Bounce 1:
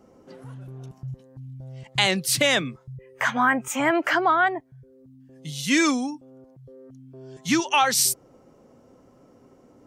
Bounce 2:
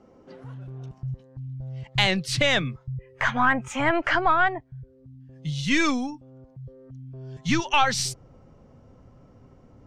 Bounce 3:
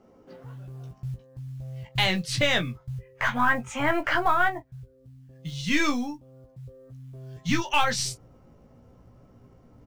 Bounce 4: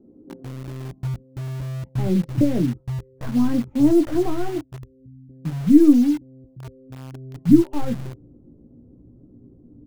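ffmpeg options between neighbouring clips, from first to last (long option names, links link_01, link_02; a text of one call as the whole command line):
ffmpeg -i in.wav -af "lowpass=4800,aeval=exprs='0.562*(cos(1*acos(clip(val(0)/0.562,-1,1)))-cos(1*PI/2))+0.0224*(cos(4*acos(clip(val(0)/0.562,-1,1)))-cos(4*PI/2))':channel_layout=same,asubboost=boost=6.5:cutoff=120" out.wav
ffmpeg -i in.wav -af "asoftclip=type=hard:threshold=-9dB,acrusher=bits=8:mode=log:mix=0:aa=0.000001,aecho=1:1:17|42:0.531|0.141,volume=-3dB" out.wav
ffmpeg -i in.wav -filter_complex "[0:a]lowpass=frequency=310:width_type=q:width=3.4,asplit=2[link_01][link_02];[link_02]acrusher=bits=5:mix=0:aa=0.000001,volume=-5dB[link_03];[link_01][link_03]amix=inputs=2:normalize=0,volume=2dB" out.wav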